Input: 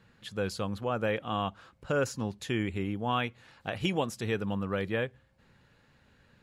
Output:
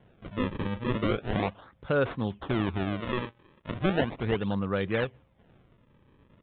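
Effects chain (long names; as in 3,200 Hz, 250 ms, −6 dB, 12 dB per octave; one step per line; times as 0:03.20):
sample-and-hold swept by an LFO 35×, swing 160% 0.37 Hz
downsampling to 8,000 Hz
0:03.00–0:03.71: low-shelf EQ 350 Hz −9 dB
level +3 dB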